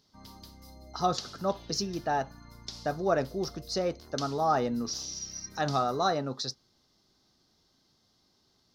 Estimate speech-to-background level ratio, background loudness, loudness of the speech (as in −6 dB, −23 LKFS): 14.5 dB, −46.0 LKFS, −31.5 LKFS